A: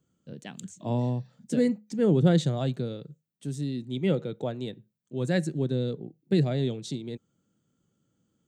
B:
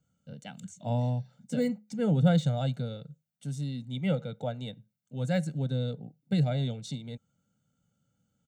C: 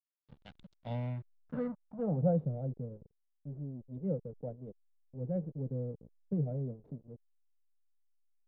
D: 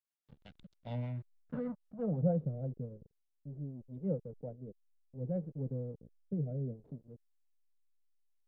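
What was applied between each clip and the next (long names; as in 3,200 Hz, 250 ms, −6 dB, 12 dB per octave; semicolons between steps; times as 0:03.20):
notch filter 650 Hz, Q 20; de-essing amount 95%; comb filter 1.4 ms, depth 87%; level −4 dB
slack as between gear wheels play −33.5 dBFS; low-pass filter sweep 3,800 Hz → 440 Hz, 0:00.74–0:02.51; level −8 dB
rotating-speaker cabinet horn 6.3 Hz, later 0.65 Hz, at 0:02.53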